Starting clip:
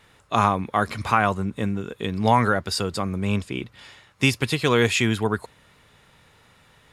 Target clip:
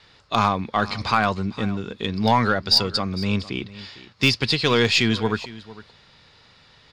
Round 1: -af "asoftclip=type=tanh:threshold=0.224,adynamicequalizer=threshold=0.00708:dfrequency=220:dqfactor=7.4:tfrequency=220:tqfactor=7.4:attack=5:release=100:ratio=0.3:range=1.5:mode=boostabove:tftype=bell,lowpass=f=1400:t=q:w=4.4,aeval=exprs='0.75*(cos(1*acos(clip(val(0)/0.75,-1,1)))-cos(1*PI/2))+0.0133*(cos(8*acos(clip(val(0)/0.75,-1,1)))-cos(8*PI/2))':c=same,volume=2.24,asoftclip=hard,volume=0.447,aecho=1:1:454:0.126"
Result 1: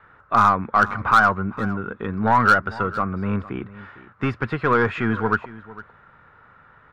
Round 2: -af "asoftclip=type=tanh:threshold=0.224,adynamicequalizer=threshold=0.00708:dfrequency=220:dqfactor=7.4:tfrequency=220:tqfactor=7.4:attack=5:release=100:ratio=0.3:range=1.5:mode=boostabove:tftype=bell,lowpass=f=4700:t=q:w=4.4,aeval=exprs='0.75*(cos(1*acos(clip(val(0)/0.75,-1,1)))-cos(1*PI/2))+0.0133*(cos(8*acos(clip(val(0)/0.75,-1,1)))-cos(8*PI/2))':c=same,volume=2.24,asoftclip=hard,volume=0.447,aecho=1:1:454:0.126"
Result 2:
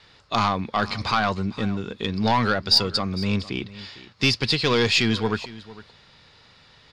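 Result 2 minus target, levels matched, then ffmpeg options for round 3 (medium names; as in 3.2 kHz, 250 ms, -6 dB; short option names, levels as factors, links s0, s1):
saturation: distortion +11 dB
-af "asoftclip=type=tanh:threshold=0.596,adynamicequalizer=threshold=0.00708:dfrequency=220:dqfactor=7.4:tfrequency=220:tqfactor=7.4:attack=5:release=100:ratio=0.3:range=1.5:mode=boostabove:tftype=bell,lowpass=f=4700:t=q:w=4.4,aeval=exprs='0.75*(cos(1*acos(clip(val(0)/0.75,-1,1)))-cos(1*PI/2))+0.0133*(cos(8*acos(clip(val(0)/0.75,-1,1)))-cos(8*PI/2))':c=same,volume=2.24,asoftclip=hard,volume=0.447,aecho=1:1:454:0.126"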